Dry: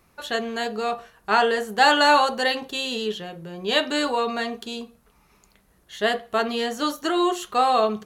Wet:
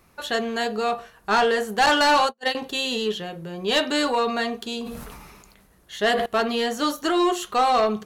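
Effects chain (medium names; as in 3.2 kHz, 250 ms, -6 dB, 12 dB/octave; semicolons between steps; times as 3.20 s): 1.86–2.55 s: gate -20 dBFS, range -46 dB; saturation -15.5 dBFS, distortion -13 dB; 4.66–6.26 s: decay stretcher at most 32 dB/s; trim +2.5 dB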